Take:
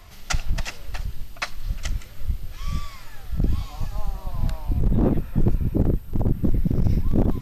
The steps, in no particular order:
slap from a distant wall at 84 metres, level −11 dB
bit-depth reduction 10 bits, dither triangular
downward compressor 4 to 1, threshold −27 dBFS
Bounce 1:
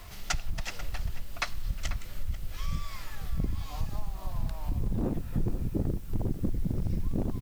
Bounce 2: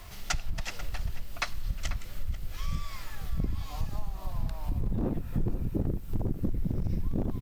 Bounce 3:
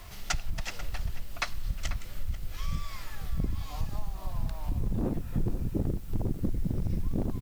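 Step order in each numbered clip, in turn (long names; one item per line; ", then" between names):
downward compressor, then slap from a distant wall, then bit-depth reduction
bit-depth reduction, then downward compressor, then slap from a distant wall
downward compressor, then bit-depth reduction, then slap from a distant wall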